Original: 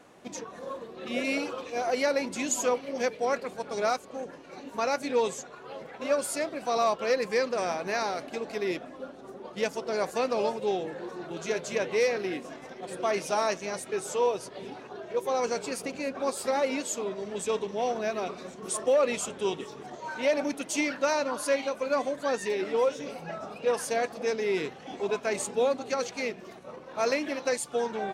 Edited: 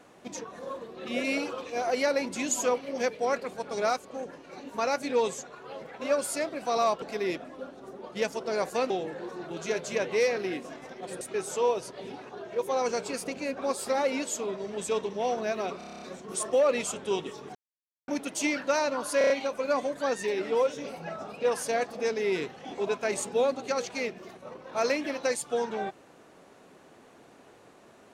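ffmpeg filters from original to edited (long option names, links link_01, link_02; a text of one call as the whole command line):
ffmpeg -i in.wav -filter_complex "[0:a]asplit=18[link_01][link_02][link_03][link_04][link_05][link_06][link_07][link_08][link_09][link_10][link_11][link_12][link_13][link_14][link_15][link_16][link_17][link_18];[link_01]atrim=end=7.022[link_19];[link_02]atrim=start=8.428:end=10.312[link_20];[link_03]atrim=start=10.698:end=13.012[link_21];[link_04]atrim=start=13.788:end=18.392[link_22];[link_05]atrim=start=18.358:end=18.392[link_23];[link_06]atrim=start=18.358:end=18.392[link_24];[link_07]atrim=start=18.358:end=18.392[link_25];[link_08]atrim=start=18.358:end=18.392[link_26];[link_09]atrim=start=18.358:end=18.392[link_27];[link_10]atrim=start=18.358:end=18.392[link_28];[link_11]atrim=start=18.358:end=18.392[link_29];[link_12]atrim=start=18.358:end=19.89,asetpts=PTS-STARTPTS,afade=type=out:start_time=1.528:duration=0.004:curve=hsin[link_30];[link_13]atrim=start=19.89:end=20.42,asetpts=PTS-STARTPTS,volume=0[link_31];[link_14]atrim=start=20.42:end=21.552,asetpts=PTS-STARTPTS,afade=type=in:duration=0.004:curve=hsin[link_32];[link_15]atrim=start=21.518:end=21.552[link_33];[link_16]atrim=start=21.518:end=21.552[link_34];[link_17]atrim=start=21.518:end=21.552[link_35];[link_18]atrim=start=21.518[link_36];[link_19][link_20]acrossfade=duration=0.004:curve1=hsin:curve2=hsin[link_37];[link_37][link_21]acrossfade=duration=0.004:curve1=hsin:curve2=hsin[link_38];[link_38][link_22]acrossfade=duration=0.004:curve1=hsin:curve2=hsin[link_39];[link_39][link_23]acrossfade=duration=0.004:curve1=hsin:curve2=hsin[link_40];[link_40][link_24]acrossfade=duration=0.004:curve1=hsin:curve2=hsin[link_41];[link_41][link_25]acrossfade=duration=0.004:curve1=hsin:curve2=hsin[link_42];[link_42][link_26]acrossfade=duration=0.004:curve1=hsin:curve2=hsin[link_43];[link_43][link_27]acrossfade=duration=0.004:curve1=hsin:curve2=hsin[link_44];[link_44][link_28]acrossfade=duration=0.004:curve1=hsin:curve2=hsin[link_45];[link_45][link_29]acrossfade=duration=0.004:curve1=hsin:curve2=hsin[link_46];[link_30][link_31][link_32]concat=n=3:v=0:a=1[link_47];[link_46][link_47]acrossfade=duration=0.004:curve1=hsin:curve2=hsin[link_48];[link_48][link_33]acrossfade=duration=0.004:curve1=hsin:curve2=hsin[link_49];[link_49][link_34]acrossfade=duration=0.004:curve1=hsin:curve2=hsin[link_50];[link_50][link_35]acrossfade=duration=0.004:curve1=hsin:curve2=hsin[link_51];[link_51][link_36]acrossfade=duration=0.004:curve1=hsin:curve2=hsin" out.wav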